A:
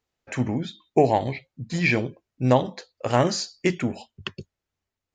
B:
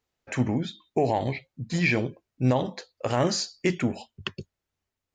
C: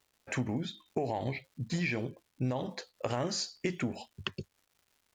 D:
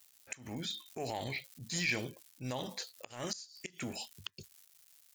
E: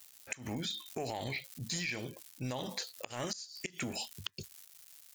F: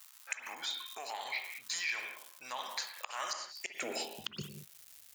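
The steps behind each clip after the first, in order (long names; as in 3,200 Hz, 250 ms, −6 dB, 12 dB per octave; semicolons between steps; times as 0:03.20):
brickwall limiter −13 dBFS, peak gain reduction 8 dB
downward compressor 6 to 1, threshold −27 dBFS, peak gain reduction 9.5 dB; surface crackle 300 per second −54 dBFS; level −2 dB
first-order pre-emphasis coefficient 0.9; gate with flip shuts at −31 dBFS, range −26 dB; transient designer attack −8 dB, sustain +2 dB; level +13.5 dB
downward compressor 6 to 1, threshold −41 dBFS, peak gain reduction 12 dB; level +6.5 dB
high-pass filter sweep 1,100 Hz → 63 Hz, 0:03.49–0:04.86; convolution reverb, pre-delay 47 ms, DRR 5 dB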